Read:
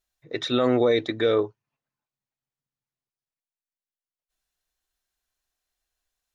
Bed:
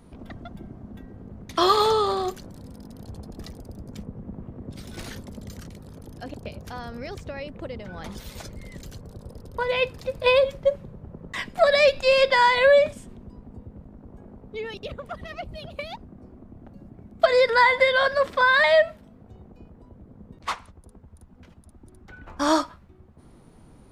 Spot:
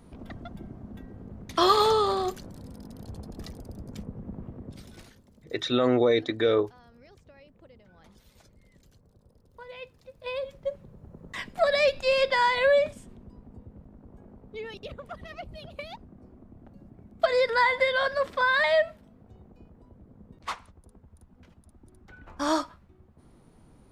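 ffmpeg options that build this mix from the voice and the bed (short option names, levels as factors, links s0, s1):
-filter_complex "[0:a]adelay=5200,volume=0.841[s0];[1:a]volume=4.22,afade=t=out:st=4.48:d=0.65:silence=0.133352,afade=t=in:st=10.17:d=1.16:silence=0.199526[s1];[s0][s1]amix=inputs=2:normalize=0"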